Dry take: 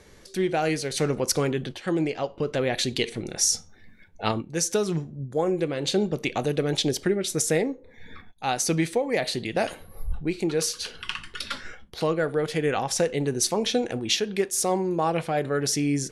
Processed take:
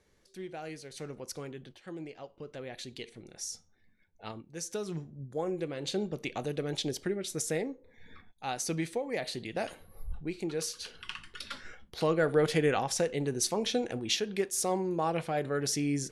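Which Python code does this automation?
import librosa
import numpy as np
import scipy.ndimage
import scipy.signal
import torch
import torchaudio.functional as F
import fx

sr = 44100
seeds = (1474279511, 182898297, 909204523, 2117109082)

y = fx.gain(x, sr, db=fx.line((4.26, -17.0), (5.07, -9.0), (11.53, -9.0), (12.45, 0.5), (12.98, -6.0)))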